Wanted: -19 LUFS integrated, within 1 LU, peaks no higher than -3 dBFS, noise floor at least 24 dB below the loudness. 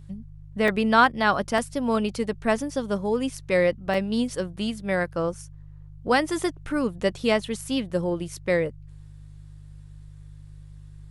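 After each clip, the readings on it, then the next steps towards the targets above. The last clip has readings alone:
dropouts 3; longest dropout 2.7 ms; hum 50 Hz; highest harmonic 150 Hz; hum level -42 dBFS; loudness -25.0 LUFS; peak level -5.0 dBFS; loudness target -19.0 LUFS
-> interpolate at 0.68/1.58/3.94 s, 2.7 ms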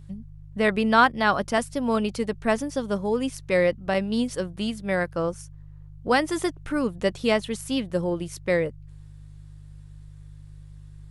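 dropouts 0; hum 50 Hz; highest harmonic 150 Hz; hum level -42 dBFS
-> de-hum 50 Hz, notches 3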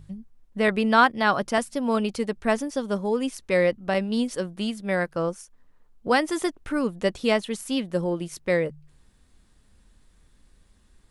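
hum not found; loudness -25.0 LUFS; peak level -5.0 dBFS; loudness target -19.0 LUFS
-> trim +6 dB; peak limiter -3 dBFS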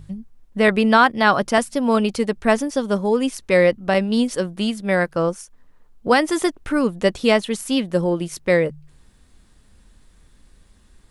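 loudness -19.5 LUFS; peak level -3.0 dBFS; noise floor -54 dBFS

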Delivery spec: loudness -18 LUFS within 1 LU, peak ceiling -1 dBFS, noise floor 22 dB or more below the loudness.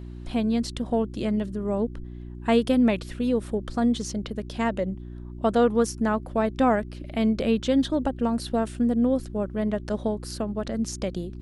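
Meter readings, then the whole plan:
hum 60 Hz; highest harmonic 360 Hz; hum level -36 dBFS; loudness -26.0 LUFS; peak level -9.5 dBFS; loudness target -18.0 LUFS
-> de-hum 60 Hz, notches 6; trim +8 dB

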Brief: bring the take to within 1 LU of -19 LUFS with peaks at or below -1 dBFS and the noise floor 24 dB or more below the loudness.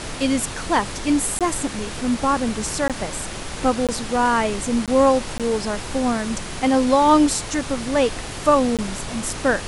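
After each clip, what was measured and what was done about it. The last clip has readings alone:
dropouts 6; longest dropout 17 ms; noise floor -31 dBFS; noise floor target -45 dBFS; loudness -21.0 LUFS; peak level -5.0 dBFS; loudness target -19.0 LUFS
-> interpolate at 1.39/2.88/3.87/4.86/5.38/8.77 s, 17 ms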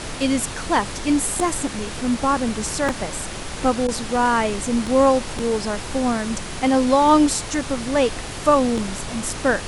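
dropouts 0; noise floor -31 dBFS; noise floor target -45 dBFS
-> noise print and reduce 14 dB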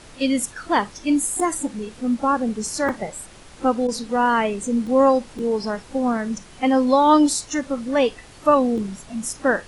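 noise floor -45 dBFS; noise floor target -46 dBFS
-> noise print and reduce 6 dB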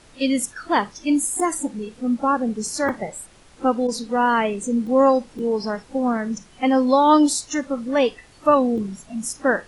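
noise floor -50 dBFS; loudness -21.5 LUFS; peak level -4.5 dBFS; loudness target -19.0 LUFS
-> trim +2.5 dB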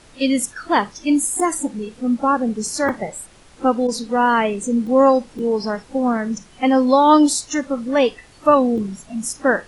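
loudness -19.0 LUFS; peak level -2.5 dBFS; noise floor -48 dBFS

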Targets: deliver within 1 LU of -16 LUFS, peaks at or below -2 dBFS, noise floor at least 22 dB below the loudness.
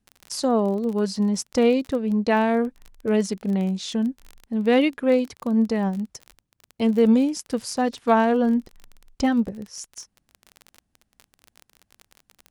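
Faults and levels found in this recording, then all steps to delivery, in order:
tick rate 28 per s; loudness -22.5 LUFS; peak level -5.5 dBFS; loudness target -16.0 LUFS
-> de-click; trim +6.5 dB; peak limiter -2 dBFS

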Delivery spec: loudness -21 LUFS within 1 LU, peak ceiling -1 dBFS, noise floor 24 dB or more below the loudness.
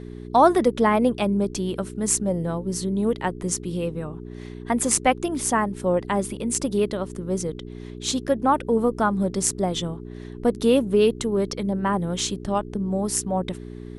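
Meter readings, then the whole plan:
hum 60 Hz; highest harmonic 420 Hz; hum level -34 dBFS; loudness -23.5 LUFS; peak level -1.5 dBFS; loudness target -21.0 LUFS
-> de-hum 60 Hz, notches 7; trim +2.5 dB; peak limiter -1 dBFS

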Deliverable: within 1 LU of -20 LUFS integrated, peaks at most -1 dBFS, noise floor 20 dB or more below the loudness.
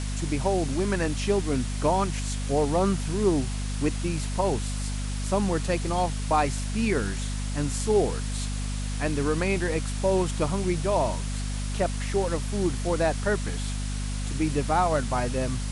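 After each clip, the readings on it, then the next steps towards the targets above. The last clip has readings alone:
hum 50 Hz; highest harmonic 250 Hz; hum level -27 dBFS; noise floor -30 dBFS; noise floor target -47 dBFS; loudness -27.0 LUFS; peak level -11.0 dBFS; loudness target -20.0 LUFS
-> de-hum 50 Hz, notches 5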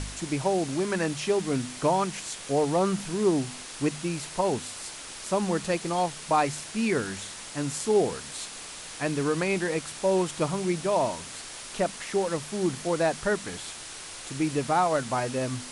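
hum not found; noise floor -41 dBFS; noise floor target -48 dBFS
-> noise reduction 7 dB, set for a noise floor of -41 dBFS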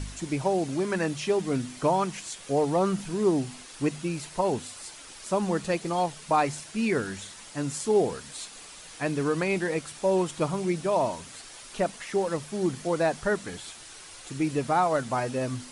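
noise floor -46 dBFS; noise floor target -48 dBFS
-> noise reduction 6 dB, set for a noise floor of -46 dBFS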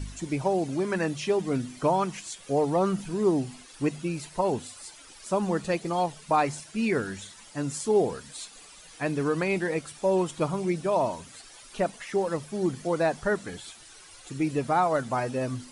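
noise floor -50 dBFS; loudness -28.0 LUFS; peak level -12.0 dBFS; loudness target -20.0 LUFS
-> trim +8 dB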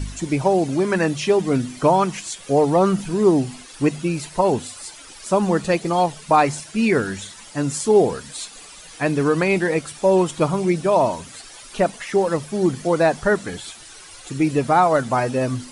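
loudness -20.0 LUFS; peak level -4.0 dBFS; noise floor -42 dBFS

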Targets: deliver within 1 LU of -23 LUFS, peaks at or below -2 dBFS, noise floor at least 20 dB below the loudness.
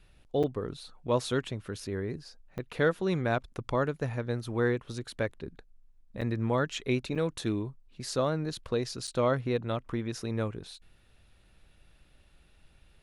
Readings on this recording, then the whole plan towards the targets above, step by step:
dropouts 5; longest dropout 6.6 ms; loudness -32.0 LUFS; peak level -14.0 dBFS; loudness target -23.0 LUFS
-> interpolate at 0.43/2.58/6.21/7.15/9.07 s, 6.6 ms; trim +9 dB

